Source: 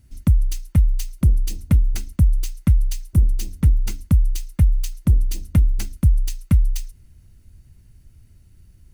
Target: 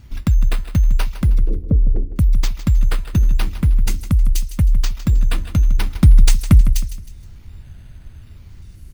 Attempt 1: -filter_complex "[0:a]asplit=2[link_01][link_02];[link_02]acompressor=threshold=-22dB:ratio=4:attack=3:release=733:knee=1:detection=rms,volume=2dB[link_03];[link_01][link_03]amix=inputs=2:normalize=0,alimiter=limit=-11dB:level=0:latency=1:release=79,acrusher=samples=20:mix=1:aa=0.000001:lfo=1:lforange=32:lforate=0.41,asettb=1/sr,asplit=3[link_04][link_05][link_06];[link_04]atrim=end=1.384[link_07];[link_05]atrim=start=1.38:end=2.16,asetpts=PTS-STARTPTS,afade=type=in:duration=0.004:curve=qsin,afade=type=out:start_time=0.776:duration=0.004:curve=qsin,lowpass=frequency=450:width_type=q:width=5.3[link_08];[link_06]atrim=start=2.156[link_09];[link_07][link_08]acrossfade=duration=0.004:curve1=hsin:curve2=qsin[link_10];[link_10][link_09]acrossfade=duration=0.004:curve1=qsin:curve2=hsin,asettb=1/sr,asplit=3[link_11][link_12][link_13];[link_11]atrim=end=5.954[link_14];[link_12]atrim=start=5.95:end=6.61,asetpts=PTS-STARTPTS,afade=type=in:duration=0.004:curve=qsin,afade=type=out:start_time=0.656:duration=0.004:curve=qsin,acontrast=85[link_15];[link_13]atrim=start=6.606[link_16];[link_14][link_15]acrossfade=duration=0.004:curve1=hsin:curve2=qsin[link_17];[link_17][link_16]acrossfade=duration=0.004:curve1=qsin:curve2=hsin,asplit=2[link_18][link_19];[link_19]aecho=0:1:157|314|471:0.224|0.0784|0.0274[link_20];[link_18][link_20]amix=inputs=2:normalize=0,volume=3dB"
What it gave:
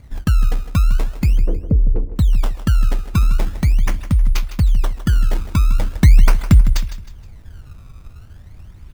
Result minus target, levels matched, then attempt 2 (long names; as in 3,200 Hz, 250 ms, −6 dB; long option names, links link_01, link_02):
sample-and-hold swept by an LFO: distortion +5 dB
-filter_complex "[0:a]asplit=2[link_01][link_02];[link_02]acompressor=threshold=-22dB:ratio=4:attack=3:release=733:knee=1:detection=rms,volume=2dB[link_03];[link_01][link_03]amix=inputs=2:normalize=0,alimiter=limit=-11dB:level=0:latency=1:release=79,acrusher=samples=4:mix=1:aa=0.000001:lfo=1:lforange=6.4:lforate=0.41,asettb=1/sr,asplit=3[link_04][link_05][link_06];[link_04]atrim=end=1.384[link_07];[link_05]atrim=start=1.38:end=2.16,asetpts=PTS-STARTPTS,afade=type=in:duration=0.004:curve=qsin,afade=type=out:start_time=0.776:duration=0.004:curve=qsin,lowpass=frequency=450:width_type=q:width=5.3[link_08];[link_06]atrim=start=2.156[link_09];[link_07][link_08]acrossfade=duration=0.004:curve1=hsin:curve2=qsin[link_10];[link_10][link_09]acrossfade=duration=0.004:curve1=qsin:curve2=hsin,asettb=1/sr,asplit=3[link_11][link_12][link_13];[link_11]atrim=end=5.954[link_14];[link_12]atrim=start=5.95:end=6.61,asetpts=PTS-STARTPTS,afade=type=in:duration=0.004:curve=qsin,afade=type=out:start_time=0.656:duration=0.004:curve=qsin,acontrast=85[link_15];[link_13]atrim=start=6.606[link_16];[link_14][link_15]acrossfade=duration=0.004:curve1=hsin:curve2=qsin[link_17];[link_17][link_16]acrossfade=duration=0.004:curve1=qsin:curve2=hsin,asplit=2[link_18][link_19];[link_19]aecho=0:1:157|314|471:0.224|0.0784|0.0274[link_20];[link_18][link_20]amix=inputs=2:normalize=0,volume=3dB"